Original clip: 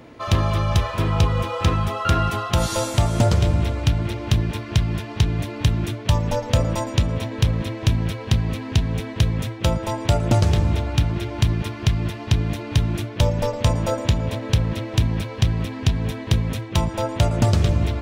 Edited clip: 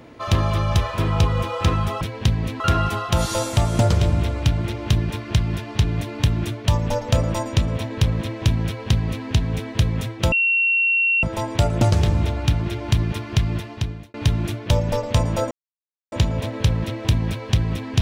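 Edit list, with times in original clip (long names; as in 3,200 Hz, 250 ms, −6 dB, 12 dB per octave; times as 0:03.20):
0:08.07–0:08.66: duplicate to 0:02.01
0:09.73: insert tone 2,730 Hz −15.5 dBFS 0.91 s
0:12.02–0:12.64: fade out
0:14.01: splice in silence 0.61 s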